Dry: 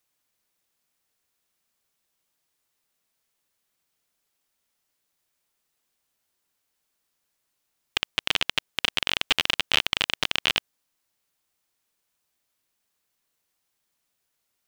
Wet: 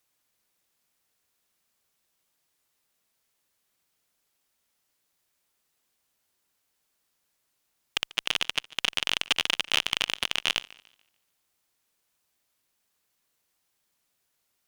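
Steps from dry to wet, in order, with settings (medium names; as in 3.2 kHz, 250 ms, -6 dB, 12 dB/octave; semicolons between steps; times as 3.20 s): one-sided clip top -17 dBFS; modulated delay 145 ms, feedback 34%, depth 111 cents, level -21 dB; trim +1.5 dB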